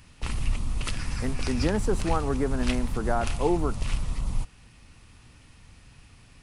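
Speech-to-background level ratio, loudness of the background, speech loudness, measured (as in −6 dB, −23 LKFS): 3.5 dB, −33.0 LKFS, −29.5 LKFS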